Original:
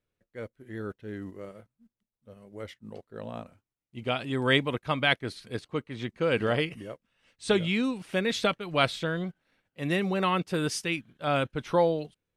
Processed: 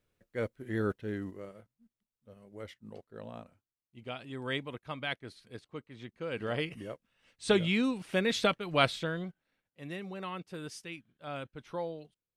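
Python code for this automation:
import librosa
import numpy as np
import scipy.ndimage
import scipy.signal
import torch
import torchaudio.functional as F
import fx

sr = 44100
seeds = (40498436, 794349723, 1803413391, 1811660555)

y = fx.gain(x, sr, db=fx.line((0.92, 5.0), (1.51, -4.5), (3.04, -4.5), (4.0, -11.5), (6.31, -11.5), (6.83, -1.5), (8.83, -1.5), (9.94, -13.5)))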